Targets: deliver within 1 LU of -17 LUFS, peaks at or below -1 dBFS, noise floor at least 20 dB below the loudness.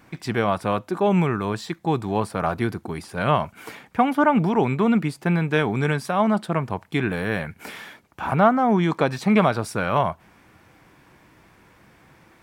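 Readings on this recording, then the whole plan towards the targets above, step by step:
loudness -22.5 LUFS; peak level -4.5 dBFS; loudness target -17.0 LUFS
-> trim +5.5 dB; peak limiter -1 dBFS

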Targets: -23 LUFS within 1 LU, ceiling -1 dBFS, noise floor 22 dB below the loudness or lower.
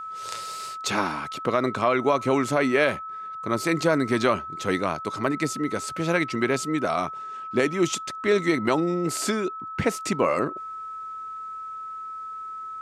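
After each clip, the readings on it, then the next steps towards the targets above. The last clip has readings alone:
steady tone 1.3 kHz; tone level -33 dBFS; loudness -26.0 LUFS; peak level -8.0 dBFS; loudness target -23.0 LUFS
-> band-stop 1.3 kHz, Q 30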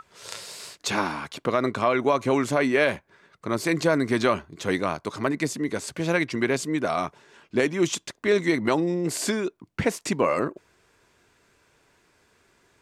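steady tone not found; loudness -25.5 LUFS; peak level -8.5 dBFS; loudness target -23.0 LUFS
-> trim +2.5 dB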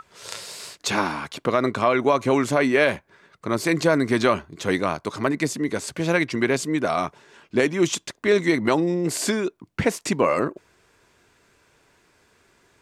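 loudness -23.0 LUFS; peak level -6.0 dBFS; noise floor -63 dBFS

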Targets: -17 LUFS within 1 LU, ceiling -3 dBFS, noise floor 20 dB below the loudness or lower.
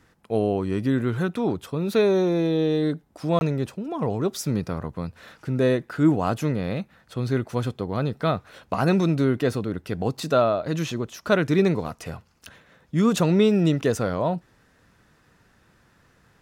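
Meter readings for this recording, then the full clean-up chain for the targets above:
dropouts 1; longest dropout 21 ms; loudness -24.0 LUFS; peak level -8.0 dBFS; loudness target -17.0 LUFS
-> interpolate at 3.39 s, 21 ms; trim +7 dB; peak limiter -3 dBFS

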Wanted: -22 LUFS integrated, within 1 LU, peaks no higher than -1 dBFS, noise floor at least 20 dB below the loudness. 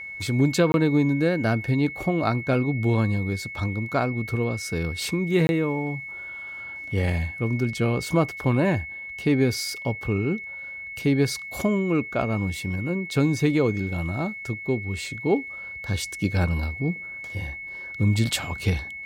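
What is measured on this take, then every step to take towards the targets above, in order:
dropouts 2; longest dropout 21 ms; steady tone 2.2 kHz; tone level -34 dBFS; loudness -25.0 LUFS; peak level -8.5 dBFS; loudness target -22.0 LUFS
-> interpolate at 0.72/5.47 s, 21 ms; band-stop 2.2 kHz, Q 30; trim +3 dB

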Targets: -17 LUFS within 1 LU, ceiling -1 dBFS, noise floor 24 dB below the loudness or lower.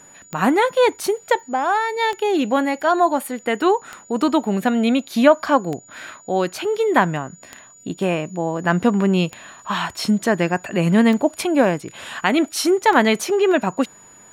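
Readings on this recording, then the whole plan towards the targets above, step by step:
clicks found 8; steady tone 6.9 kHz; tone level -45 dBFS; loudness -19.5 LUFS; peak level -1.5 dBFS; loudness target -17.0 LUFS
-> de-click; band-stop 6.9 kHz, Q 30; trim +2.5 dB; peak limiter -1 dBFS

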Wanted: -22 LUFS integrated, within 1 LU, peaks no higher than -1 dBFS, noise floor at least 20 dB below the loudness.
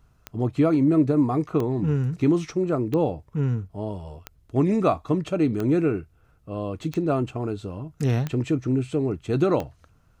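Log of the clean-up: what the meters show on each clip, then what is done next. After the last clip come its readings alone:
clicks found 8; loudness -24.5 LUFS; peak level -8.5 dBFS; loudness target -22.0 LUFS
-> de-click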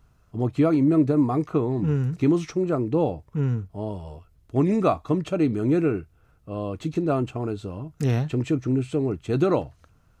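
clicks found 0; loudness -24.5 LUFS; peak level -8.5 dBFS; loudness target -22.0 LUFS
-> trim +2.5 dB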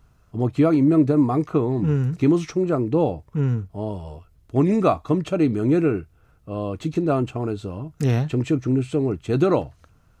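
loudness -22.0 LUFS; peak level -6.0 dBFS; noise floor -58 dBFS

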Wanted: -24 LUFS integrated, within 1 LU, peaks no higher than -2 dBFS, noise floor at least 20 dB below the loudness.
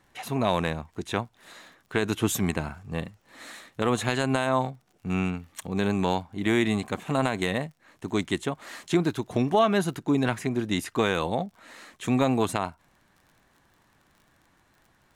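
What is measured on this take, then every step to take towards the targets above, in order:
tick rate 44 per s; loudness -27.5 LUFS; peak level -10.0 dBFS; loudness target -24.0 LUFS
-> de-click; trim +3.5 dB

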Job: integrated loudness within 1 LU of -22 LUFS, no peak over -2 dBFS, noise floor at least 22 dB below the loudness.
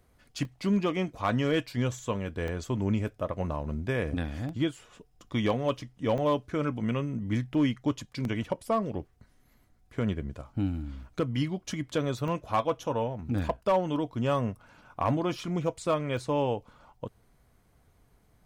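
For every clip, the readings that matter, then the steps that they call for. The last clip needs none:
clipped samples 0.2%; clipping level -18.0 dBFS; dropouts 8; longest dropout 1.4 ms; loudness -30.5 LUFS; peak level -18.0 dBFS; loudness target -22.0 LUFS
-> clip repair -18 dBFS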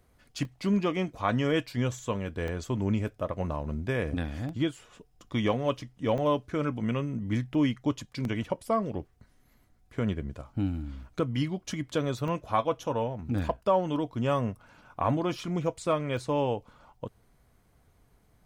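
clipped samples 0.0%; dropouts 8; longest dropout 1.4 ms
-> interpolate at 0.45/2.48/4.49/6.18/7.54/8.25/12.28/16.17 s, 1.4 ms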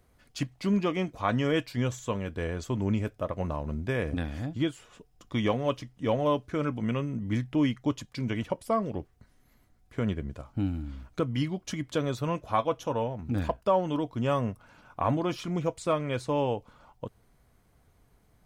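dropouts 0; loudness -30.5 LUFS; peak level -13.5 dBFS; loudness target -22.0 LUFS
-> trim +8.5 dB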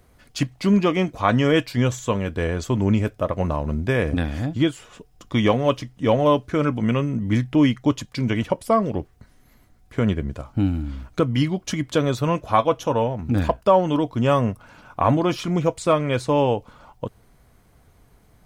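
loudness -22.0 LUFS; peak level -5.0 dBFS; noise floor -56 dBFS

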